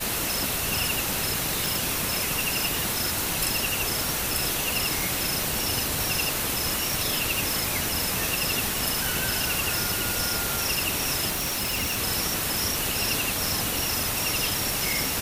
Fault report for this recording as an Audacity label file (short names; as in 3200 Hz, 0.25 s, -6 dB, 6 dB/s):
1.660000	1.660000	pop
11.290000	11.990000	clipped -23.5 dBFS